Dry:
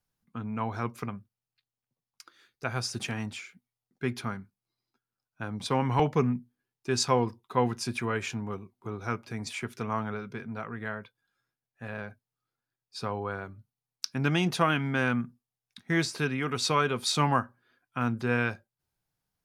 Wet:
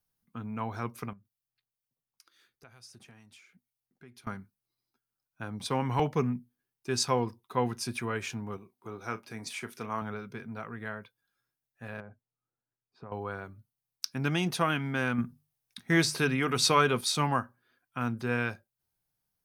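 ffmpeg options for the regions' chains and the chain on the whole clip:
-filter_complex "[0:a]asettb=1/sr,asplit=3[s0][s1][s2];[s0]atrim=end=1.134[s3];[s1]atrim=start=1.13:end=4.27,asetpts=PTS-STARTPTS,afade=t=in:d=0.004:c=qsin,afade=t=out:st=3.136:d=0.004:c=qsin,acompressor=threshold=0.002:ratio=2.5:attack=3.2:release=140:knee=1:detection=peak,acrossover=split=2100[s4][s5];[s4]aeval=exprs='val(0)*(1-0.5/2+0.5/2*cos(2*PI*2.1*n/s))':c=same[s6];[s5]aeval=exprs='val(0)*(1-0.5/2-0.5/2*cos(2*PI*2.1*n/s))':c=same[s7];[s6][s7]amix=inputs=2:normalize=0[s8];[s2]atrim=start=4.266[s9];[s3][s8]acrossfade=d=0.004:c1=hsin:c2=qsin[s10];[s10][s9]acrossfade=d=0.004:c1=qsin:c2=hsin,asettb=1/sr,asplit=3[s11][s12][s13];[s11]atrim=end=8.574[s14];[s12]atrim=start=8.57:end=10.02,asetpts=PTS-STARTPTS,afade=t=in:d=0.004:c=qsin,afade=t=out:st=1.446:d=0.004:c=qsin,lowshelf=f=120:g=-12,asplit=2[s15][s16];[s16]adelay=36,volume=0.211[s17];[s15][s17]amix=inputs=2:normalize=0,atrim=end_sample=63945[s18];[s13]atrim=start=10.016[s19];[s14][s18]acrossfade=d=0.004:c1=hsin:c2=qsin[s20];[s20][s19]acrossfade=d=0.004:c1=qsin:c2=hsin,asettb=1/sr,asplit=3[s21][s22][s23];[s21]atrim=end=12.004[s24];[s22]atrim=start=12:end=13.12,asetpts=PTS-STARTPTS,afade=t=in:d=0.004:c=qsin,afade=t=out:st=1.116:d=0.004:c=qsin,lowpass=1100,acompressor=threshold=0.0112:ratio=3:attack=3.2:release=140:knee=1:detection=peak[s25];[s23]atrim=start=13.116[s26];[s24][s25]acrossfade=d=0.004:c1=hsin:c2=qsin[s27];[s27][s26]acrossfade=d=0.004:c1=qsin:c2=hsin,asettb=1/sr,asplit=3[s28][s29][s30];[s28]atrim=end=15.184[s31];[s29]atrim=start=15.18:end=17.01,asetpts=PTS-STARTPTS,afade=t=in:d=0.004:c=qsin,afade=t=out:st=1.826:d=0.004:c=qsin,bandreject=f=50:t=h:w=6,bandreject=f=100:t=h:w=6,bandreject=f=150:t=h:w=6,acontrast=31[s32];[s30]atrim=start=17.006[s33];[s31][s32]acrossfade=d=0.004:c1=hsin:c2=qsin[s34];[s34][s33]acrossfade=d=0.004:c1=qsin:c2=hsin,highshelf=f=9400:g=10.5,bandreject=f=7200:w=13,volume=0.708"

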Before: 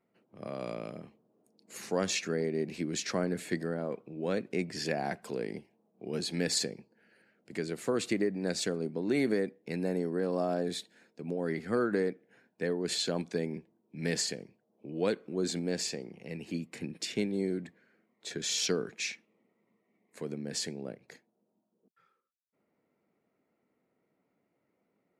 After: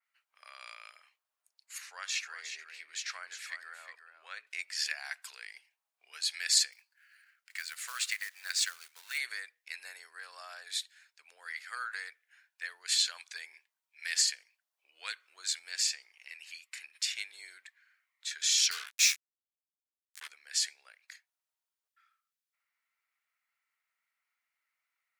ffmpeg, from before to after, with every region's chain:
-filter_complex "[0:a]asettb=1/sr,asplit=3[s0][s1][s2];[s0]atrim=end=1.784[s3];[s1]atrim=start=1.78:end=4.47,asetpts=PTS-STARTPTS,afade=t=in:d=0.004:c=qsin,afade=t=out:st=2.686:d=0.004:c=qsin,highshelf=f=3200:g=-10.5,bandreject=f=47.79:t=h:w=4,bandreject=f=95.58:t=h:w=4,bandreject=f=143.37:t=h:w=4,bandreject=f=191.16:t=h:w=4,bandreject=f=238.95:t=h:w=4,bandreject=f=286.74:t=h:w=4,bandreject=f=334.53:t=h:w=4,bandreject=f=382.32:t=h:w=4,bandreject=f=430.11:t=h:w=4,aecho=1:1:360:0.376,atrim=end_sample=118629[s4];[s2]atrim=start=4.466[s5];[s3][s4]acrossfade=d=0.004:c1=hsin:c2=qsin[s6];[s6][s5]acrossfade=d=0.004:c1=qsin:c2=hsin,asettb=1/sr,asplit=3[s7][s8][s9];[s7]atrim=end=6.724[s10];[s8]atrim=start=6.72:end=9.18,asetpts=PTS-STARTPTS,afade=t=in:d=0.004:c=qsin,afade=t=out:st=2.456:d=0.004:c=qsin,highpass=f=770:p=1,equalizer=f=1400:t=o:w=1.2:g=3.5,acrusher=bits=4:mode=log:mix=0:aa=0.000001[s11];[s9]atrim=start=9.176[s12];[s10][s11]acrossfade=d=0.004:c1=hsin:c2=qsin[s13];[s13][s12]acrossfade=d=0.004:c1=qsin:c2=hsin,asettb=1/sr,asplit=3[s14][s15][s16];[s14]atrim=end=18.714[s17];[s15]atrim=start=18.71:end=20.28,asetpts=PTS-STARTPTS,afade=t=in:d=0.004:c=qsin,afade=t=out:st=1.566:d=0.004:c=qsin,highshelf=f=5300:g=11,acrusher=bits=5:mix=0:aa=0.5,asplit=2[s18][s19];[s19]adelay=14,volume=0.668[s20];[s18][s20]amix=inputs=2:normalize=0,atrim=end_sample=69237[s21];[s16]atrim=start=20.276[s22];[s17][s21]acrossfade=d=0.004:c1=hsin:c2=qsin[s23];[s23][s22]acrossfade=d=0.004:c1=qsin:c2=hsin,highpass=f=1400:w=0.5412,highpass=f=1400:w=1.3066,adynamicequalizer=threshold=0.00398:dfrequency=3200:dqfactor=0.7:tfrequency=3200:tqfactor=0.7:attack=5:release=100:ratio=0.375:range=1.5:mode=boostabove:tftype=highshelf,volume=1.41"

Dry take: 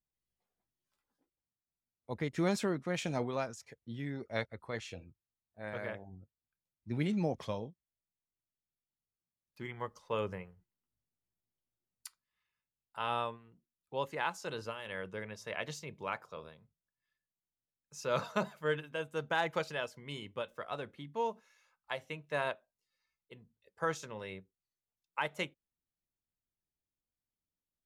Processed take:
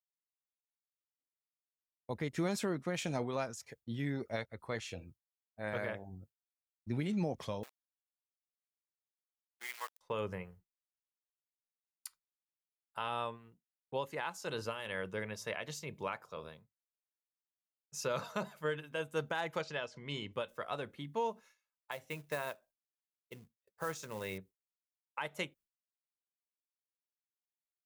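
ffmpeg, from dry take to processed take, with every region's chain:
-filter_complex "[0:a]asettb=1/sr,asplit=3[s0][s1][s2];[s0]atrim=end=7.634[s3];[s1]atrim=start=7.63:end=10.01,asetpts=PTS-STARTPTS,afade=t=in:d=0.004:c=qsin,afade=t=out:st=2.376:d=0.004:c=qsin,aeval=exprs='val(0)*gte(abs(val(0)),0.00596)':c=same,highpass=1200[s4];[s2]atrim=start=10.006[s5];[s3][s4]acrossfade=d=0.004:c1=hsin:c2=qsin[s6];[s6][s5]acrossfade=d=0.004:c1=qsin:c2=hsin,asettb=1/sr,asplit=3[s7][s8][s9];[s7]atrim=end=19.614[s10];[s8]atrim=start=19.61:end=20.33,asetpts=PTS-STARTPTS,afade=t=in:d=0.004:c=qsin,afade=t=out:st=0.716:d=0.004:c=qsin,lowpass=f=6600:w=0.5412,lowpass=f=6600:w=1.3066,acompressor=mode=upward:threshold=0.00631:ratio=2.5:attack=3.2:release=140:knee=2.83:detection=peak[s11];[s9]atrim=start=20.326[s12];[s10][s11]acrossfade=d=0.004:c1=hsin:c2=qsin[s13];[s13][s12]acrossfade=d=0.004:c1=qsin:c2=hsin,asettb=1/sr,asplit=3[s14][s15][s16];[s14]atrim=end=21.914[s17];[s15]atrim=start=21.91:end=24.38,asetpts=PTS-STARTPTS,afade=t=in:d=0.004:c=qsin,afade=t=out:st=2.466:d=0.004:c=qsin,equalizer=f=3100:t=o:w=0.22:g=-4,acrusher=bits=4:mode=log:mix=0:aa=0.000001[s18];[s16]atrim=start=24.376[s19];[s17][s18]acrossfade=d=0.004:c1=hsin:c2=qsin[s20];[s20][s19]acrossfade=d=0.004:c1=qsin:c2=hsin,agate=range=0.0224:threshold=0.00178:ratio=3:detection=peak,highshelf=f=9300:g=7.5,alimiter=level_in=1.58:limit=0.0631:level=0:latency=1:release=388,volume=0.631,volume=1.41"

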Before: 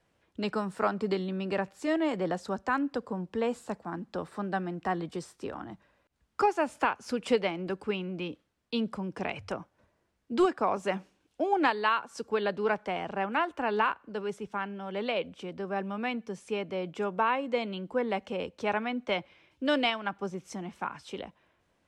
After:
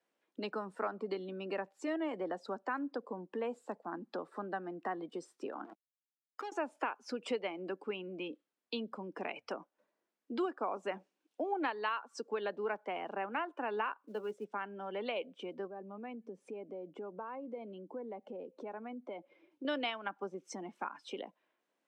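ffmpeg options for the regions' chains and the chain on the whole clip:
-filter_complex "[0:a]asettb=1/sr,asplit=3[s0][s1][s2];[s0]atrim=end=5.644[s3];[s1]atrim=start=5.64:end=6.52,asetpts=PTS-STARTPTS,afade=t=in:d=0.004:c=qsin,afade=t=out:st=0.876:d=0.004:c=qsin,acompressor=threshold=0.00562:ratio=3:attack=3.2:release=140:knee=1:detection=peak,acrusher=bits=6:mix=0:aa=0.5[s4];[s2]atrim=start=6.516[s5];[s3][s4]acrossfade=d=0.004:c1=hsin:c2=qsin[s6];[s6][s5]acrossfade=d=0.004:c1=qsin:c2=hsin,asettb=1/sr,asplit=3[s7][s8][s9];[s7]atrim=end=13.984[s10];[s8]atrim=start=13.98:end=14.45,asetpts=PTS-STARTPTS,afade=t=in:d=0.004:c=qsin,afade=t=out:st=0.466:d=0.004:c=qsin,equalizer=f=1800:w=0.78:g=-3.5,asplit=2[s11][s12];[s12]adelay=14,volume=0.316[s13];[s11][s13]amix=inputs=2:normalize=0,atrim=end_sample=20727,acrusher=bits=5:mode=log:mix=0:aa=0.000001[s14];[s9]atrim=start=14.446[s15];[s10][s14]acrossfade=d=0.004:c1=hsin:c2=qsin[s16];[s16][s15]acrossfade=d=0.004:c1=qsin:c2=hsin,asettb=1/sr,asplit=3[s17][s18][s19];[s17]atrim=end=15.674[s20];[s18]atrim=start=15.67:end=19.65,asetpts=PTS-STARTPTS,afade=t=in:d=0.004:c=qsin,afade=t=out:st=3.976:d=0.004:c=qsin,tiltshelf=f=1100:g=6.5,acompressor=threshold=0.00251:ratio=2:attack=3.2:release=140:knee=1:detection=peak[s21];[s19]atrim=start=19.646[s22];[s20][s21]acrossfade=d=0.004:c1=hsin:c2=qsin[s23];[s23][s22]acrossfade=d=0.004:c1=qsin:c2=hsin,acompressor=threshold=0.00501:ratio=2,highpass=f=240:w=0.5412,highpass=f=240:w=1.3066,afftdn=nr=14:nf=-53,volume=1.5"

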